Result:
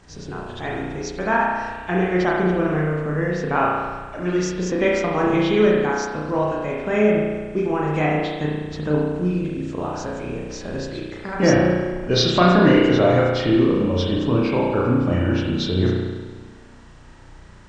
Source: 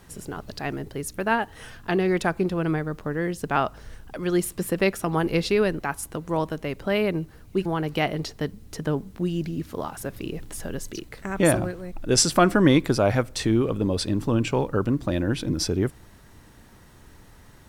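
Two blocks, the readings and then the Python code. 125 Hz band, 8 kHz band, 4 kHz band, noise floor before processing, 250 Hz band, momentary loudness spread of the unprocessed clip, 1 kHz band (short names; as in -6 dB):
+4.5 dB, -7.5 dB, +3.5 dB, -50 dBFS, +5.0 dB, 14 LU, +5.0 dB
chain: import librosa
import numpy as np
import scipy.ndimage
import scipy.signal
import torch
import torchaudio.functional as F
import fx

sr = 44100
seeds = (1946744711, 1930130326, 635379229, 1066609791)

y = fx.freq_compress(x, sr, knee_hz=2000.0, ratio=1.5)
y = fx.rev_spring(y, sr, rt60_s=1.4, pass_ms=(33,), chirp_ms=55, drr_db=-3.5)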